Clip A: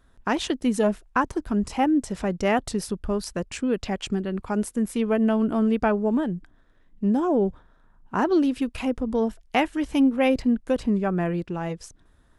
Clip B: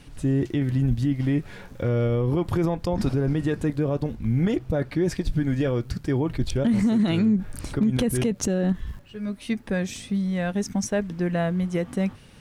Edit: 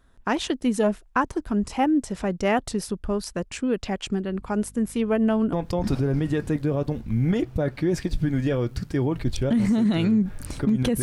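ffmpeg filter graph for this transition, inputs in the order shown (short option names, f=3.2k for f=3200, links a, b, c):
-filter_complex "[0:a]asettb=1/sr,asplit=3[a][b][c];[a]atrim=end=4.284[d];[b]atrim=start=4.28:end=5.53,asetpts=PTS-STARTPTS,afade=t=in:d=0.004:c=qsin,afade=t=out:st=1.246:d=0.004:c=qsin,aeval=exprs='val(0)+0.00447*(sin(2*PI*50*n/s)+sin(2*PI*2*50*n/s)/2+sin(2*PI*3*50*n/s)/3+sin(2*PI*4*50*n/s)/4+sin(2*PI*5*50*n/s)/5)':c=same[e];[c]atrim=start=5.526[f];[d][e]acrossfade=d=0.004:c1=hsin:c2=qsin[g];[g][f]acrossfade=d=0.004:c1=qsin:c2=hsin,apad=whole_dur=11.02,atrim=end=11.02,atrim=end=5.532[h];[1:a]atrim=start=2.668:end=8.16[i];[h][i]acrossfade=d=0.004:c1=hsin:c2=hsin"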